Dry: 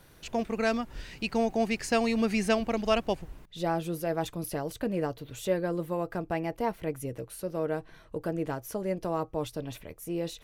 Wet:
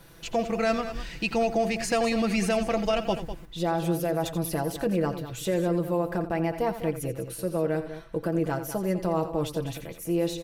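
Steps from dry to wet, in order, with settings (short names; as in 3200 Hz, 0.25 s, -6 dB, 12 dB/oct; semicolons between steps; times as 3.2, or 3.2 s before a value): comb 6 ms, depth 52%; limiter -20 dBFS, peak gain reduction 10 dB; tapped delay 86/200 ms -12.5/-12 dB; gain +3.5 dB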